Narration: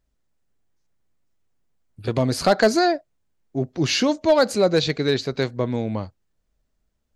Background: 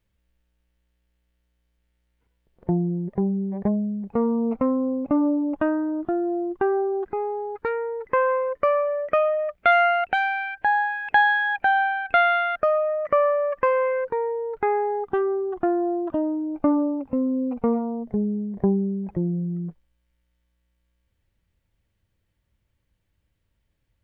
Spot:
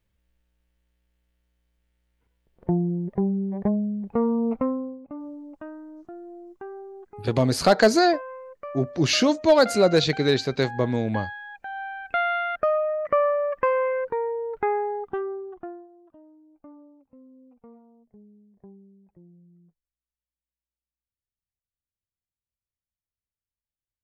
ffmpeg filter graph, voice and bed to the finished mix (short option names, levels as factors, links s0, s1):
-filter_complex "[0:a]adelay=5200,volume=1[s0];[1:a]volume=5.31,afade=t=out:st=4.52:d=0.47:silence=0.158489,afade=t=in:st=11.68:d=1:silence=0.177828,afade=t=out:st=14.65:d=1.23:silence=0.0501187[s1];[s0][s1]amix=inputs=2:normalize=0"